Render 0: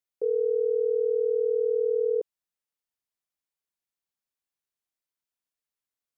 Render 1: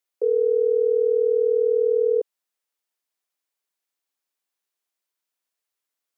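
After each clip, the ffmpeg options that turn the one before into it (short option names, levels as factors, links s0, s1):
-af "highpass=310,volume=2"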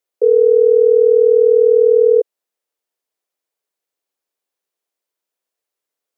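-af "equalizer=f=470:t=o:w=1.3:g=9.5"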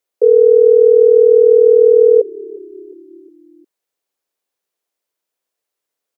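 -filter_complex "[0:a]asplit=5[s0][s1][s2][s3][s4];[s1]adelay=357,afreqshift=-34,volume=0.075[s5];[s2]adelay=714,afreqshift=-68,volume=0.0422[s6];[s3]adelay=1071,afreqshift=-102,volume=0.0234[s7];[s4]adelay=1428,afreqshift=-136,volume=0.0132[s8];[s0][s5][s6][s7][s8]amix=inputs=5:normalize=0,volume=1.33"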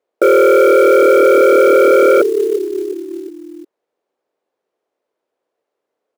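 -af "aeval=exprs='0.891*sin(PI/2*3.98*val(0)/0.891)':c=same,bandpass=f=450:t=q:w=0.95:csg=0,acrusher=bits=6:mode=log:mix=0:aa=0.000001,volume=0.841"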